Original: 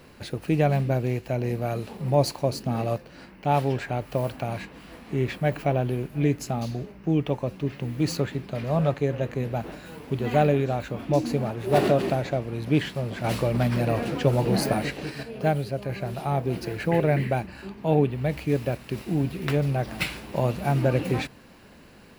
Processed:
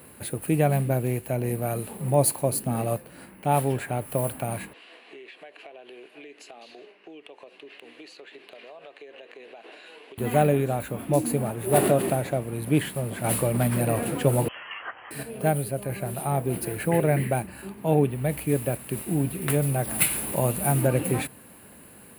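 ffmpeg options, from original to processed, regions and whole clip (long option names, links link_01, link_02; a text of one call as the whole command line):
ffmpeg -i in.wav -filter_complex "[0:a]asettb=1/sr,asplit=3[link_01][link_02][link_03];[link_01]atrim=end=4.734[link_04];[link_02]atrim=start=4.73:end=10.18,asetpts=PTS-STARTPTS,afade=type=in:duration=0.004:curve=qsin,afade=type=out:start_time=5.446:duration=0.004:curve=qsin,highpass=frequency=430:width=0.5412,highpass=frequency=430:width=1.3066,equalizer=frequency=550:width_type=q:width=4:gain=-7,equalizer=frequency=880:width_type=q:width=4:gain=-7,equalizer=frequency=1300:width_type=q:width=4:gain=-7,equalizer=frequency=2800:width_type=q:width=4:gain=7,equalizer=frequency=4100:width_type=q:width=4:gain=4,lowpass=frequency=5300:width=0.5412,lowpass=frequency=5300:width=1.3066,acompressor=threshold=-40dB:ratio=20:attack=3.2:release=140:knee=1:detection=peak[link_05];[link_03]atrim=start=10.176[link_06];[link_04][link_05]acrossfade=duration=0.004:curve1=hsin:curve2=qsin[link_07];[link_07][link_06]acrossfade=duration=0.004:curve1=qsin:curve2=hsin,asettb=1/sr,asplit=3[link_08][link_09][link_10];[link_08]atrim=end=14.484[link_11];[link_09]atrim=start=14.48:end=15.11,asetpts=PTS-STARTPTS,afade=type=in:duration=0.004:curve=qsin,afade=type=out:start_time=0.626:duration=0.004:curve=qsin,highpass=1400,lowpass=frequency=3000:width_type=q:width=0.5098,lowpass=frequency=3000:width_type=q:width=0.6013,lowpass=frequency=3000:width_type=q:width=0.9,lowpass=frequency=3000:width_type=q:width=2.563,afreqshift=-3500[link_12];[link_10]atrim=start=15.106[link_13];[link_11][link_12]acrossfade=duration=0.004:curve1=hsin:curve2=qsin[link_14];[link_14][link_13]acrossfade=duration=0.004:curve1=qsin:curve2=hsin,asettb=1/sr,asplit=3[link_15][link_16][link_17];[link_15]atrim=end=19.504[link_18];[link_16]atrim=start=19.5:end=20.87,asetpts=PTS-STARTPTS,afade=type=in:duration=0.004:curve=qsin,afade=type=out:start_time=1.366:duration=0.004:curve=qsin,highshelf=frequency=5500:gain=5.5,acompressor=mode=upward:threshold=-27dB:ratio=2.5:attack=3.2:release=140:knee=2.83:detection=peak[link_19];[link_17]atrim=start=20.866[link_20];[link_18][link_19]acrossfade=duration=0.004:curve1=hsin:curve2=qsin[link_21];[link_21][link_20]acrossfade=duration=0.004:curve1=qsin:curve2=hsin,highpass=71,highshelf=frequency=7500:width_type=q:width=3:gain=11.5" out.wav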